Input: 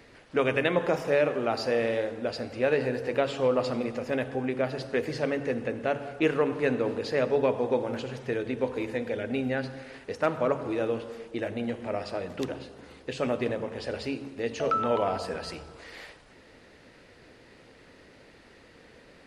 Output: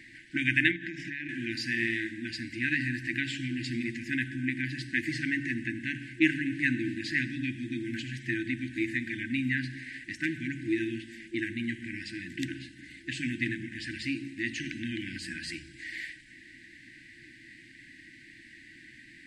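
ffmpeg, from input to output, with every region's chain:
-filter_complex "[0:a]asettb=1/sr,asplit=3[a][b][c];[a]atrim=end=0.714[d];[b]atrim=start=0.71:end=1.29,asetpts=PTS-STARTPTS,afade=t=in:d=0.004:c=qsin,afade=t=out:st=0.576:d=0.004:c=qsin,lowpass=5.2k,acompressor=threshold=-29dB:ratio=10:attack=3.2:release=140:knee=1:detection=peak[e];[c]atrim=start=1.286[f];[d][e]acrossfade=d=0.004:c1=hsin:c2=qsin[g];[g][f]acrossfade=d=0.004:c1=qsin:c2=hsin,equalizer=f=125:t=o:w=0.33:g=8,equalizer=f=400:t=o:w=0.33:g=10,equalizer=f=1.25k:t=o:w=0.33:g=-8,equalizer=f=2k:t=o:w=0.33:g=8,equalizer=f=8k:t=o:w=0.33:g=9,afftfilt=real='re*(1-between(b*sr/4096,350,1500))':imag='im*(1-between(b*sr/4096,350,1500))':win_size=4096:overlap=0.75,bass=f=250:g=-10,treble=f=4k:g=-6,volume=3.5dB"

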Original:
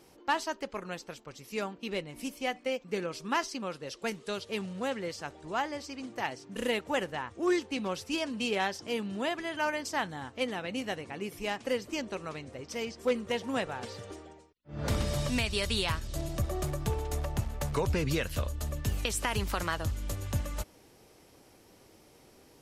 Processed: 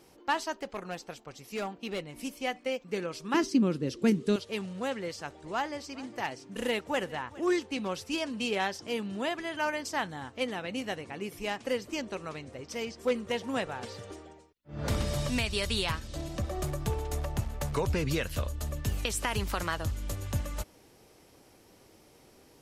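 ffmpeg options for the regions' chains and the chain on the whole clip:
-filter_complex "[0:a]asettb=1/sr,asplit=3[a][b][c];[a]atrim=end=0.524[d];[b]atrim=start=0.52:end=2.01,asetpts=PTS-STARTPTS,afade=t=in:d=0.004:c=qsin,afade=t=out:st=1.486:d=0.004:c=qsin,equalizer=f=740:t=o:w=0.25:g=7,asoftclip=type=hard:threshold=-29dB[e];[c]atrim=start=2.006[f];[d][e]acrossfade=d=0.004:c1=hsin:c2=qsin[g];[g][f]acrossfade=d=0.004:c1=qsin:c2=hsin,asettb=1/sr,asplit=3[h][i][j];[h]atrim=end=3.344[k];[i]atrim=start=3.34:end=4.36,asetpts=PTS-STARTPTS,afade=t=in:d=0.004:c=qsin,afade=t=out:st=1.016:d=0.004:c=qsin,highpass=50,lowshelf=f=460:t=q:w=1.5:g=13[l];[j]atrim=start=4.356[m];[k][l]acrossfade=d=0.004:c1=hsin:c2=qsin[n];[n][m]acrossfade=d=0.004:c1=qsin:c2=hsin,asettb=1/sr,asplit=3[o][p][q];[o]atrim=end=5.054[r];[p]atrim=start=5.05:end=7.44,asetpts=PTS-STARTPTS,afade=t=in:d=0.004:c=qsin,afade=t=out:st=2.386:d=0.004:c=qsin,volume=21.5dB,asoftclip=hard,volume=-21.5dB,aecho=1:1:412:0.1,atrim=end_sample=105399[s];[q]atrim=start=7.436[t];[r][s]acrossfade=d=0.004:c1=hsin:c2=qsin[u];[u][t]acrossfade=d=0.004:c1=qsin:c2=hsin,asettb=1/sr,asplit=3[v][w][x];[v]atrim=end=15.914[y];[w]atrim=start=15.91:end=16.58,asetpts=PTS-STARTPTS,afade=t=in:d=0.004:c=qsin,afade=t=out:st=0.666:d=0.004:c=qsin,highpass=57,acrossover=split=7000[z][aa];[aa]acompressor=threshold=-57dB:ratio=4:attack=1:release=60[ab];[z][ab]amix=inputs=2:normalize=0,aecho=1:1:3.9:0.35,atrim=end_sample=29547[ac];[x]atrim=start=16.576[ad];[y][ac]acrossfade=d=0.004:c1=hsin:c2=qsin[ae];[ae][ad]acrossfade=d=0.004:c1=qsin:c2=hsin"

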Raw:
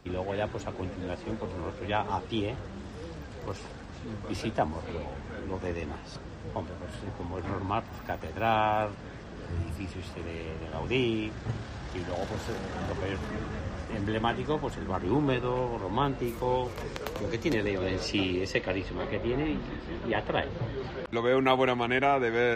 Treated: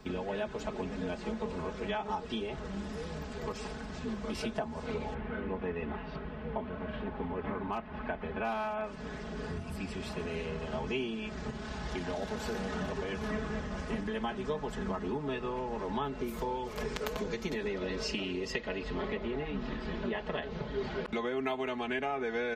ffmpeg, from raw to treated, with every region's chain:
-filter_complex "[0:a]asettb=1/sr,asplit=3[a][b][c];[a]atrim=end=5.144[d];[b]atrim=start=5.14:end=8.84,asetpts=PTS-STARTPTS,afade=t=in:d=0.004:c=qsin,afade=t=out:st=3.696:d=0.004:c=qsin,lowpass=f=3k:w=0.5412,lowpass=f=3k:w=1.3066,asoftclip=type=hard:threshold=-18dB[e];[c]atrim=start=8.836[f];[d][e]acrossfade=d=0.004:c1=hsin:c2=qsin[g];[g][f]acrossfade=d=0.004:c1=qsin:c2=hsin,acompressor=threshold=-34dB:ratio=6,aecho=1:1:4.7:0.96"

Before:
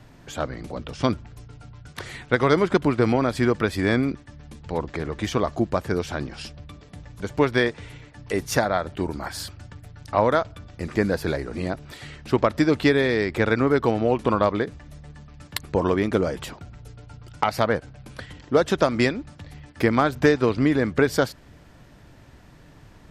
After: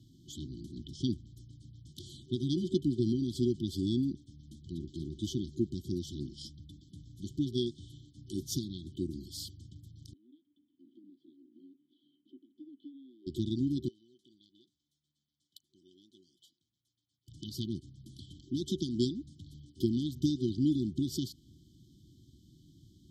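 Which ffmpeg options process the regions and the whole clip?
-filter_complex "[0:a]asettb=1/sr,asplit=3[a][b][c];[a]atrim=end=10.134[d];[b]atrim=start=10.13:end=13.27,asetpts=PTS-STARTPTS,afade=t=in:d=0.004:c=qsin,afade=t=out:st=3.136:d=0.004:c=qsin,acrossover=split=290 2700:gain=0.0708 1 0.0794[e][f][g];[e][f][g]amix=inputs=3:normalize=0,acompressor=threshold=-37dB:ratio=2:attack=3.2:release=140:knee=1:detection=peak,asplit=3[h][i][j];[h]bandpass=f=270:t=q:w=8,volume=0dB[k];[i]bandpass=f=2.29k:t=q:w=8,volume=-6dB[l];[j]bandpass=f=3.01k:t=q:w=8,volume=-9dB[m];[k][l][m]amix=inputs=3:normalize=0[n];[c]atrim=start=13.266[o];[d][n]acrossfade=d=0.004:c1=hsin:c2=qsin[p];[p][o]acrossfade=d=0.004:c1=qsin:c2=hsin,asettb=1/sr,asplit=3[q][r][s];[q]atrim=end=13.884[t];[r]atrim=start=13.88:end=17.28,asetpts=PTS-STARTPTS,afade=t=in:d=0.004:c=qsin,afade=t=out:st=3.396:d=0.004:c=qsin,bandpass=f=1.6k:t=q:w=5.8,aemphasis=mode=production:type=75fm[u];[s]atrim=start=17.276[v];[t][u]acrossfade=d=0.004:c1=hsin:c2=qsin[w];[w][v]acrossfade=d=0.004:c1=qsin:c2=hsin,highpass=69,afftfilt=real='re*(1-between(b*sr/4096,380,3000))':imag='im*(1-between(b*sr/4096,380,3000))':win_size=4096:overlap=0.75,equalizer=f=10k:t=o:w=0.23:g=-7.5,volume=-7.5dB"

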